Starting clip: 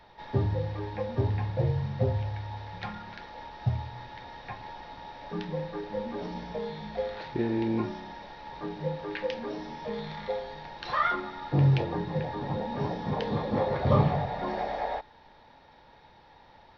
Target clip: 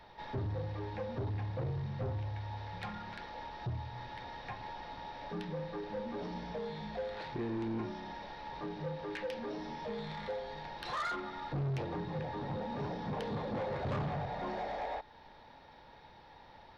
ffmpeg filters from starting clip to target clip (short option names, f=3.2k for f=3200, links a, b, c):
-filter_complex "[0:a]asplit=2[a][b];[b]acompressor=threshold=-39dB:ratio=6,volume=-0.5dB[c];[a][c]amix=inputs=2:normalize=0,asoftclip=type=tanh:threshold=-25.5dB,volume=-6.5dB"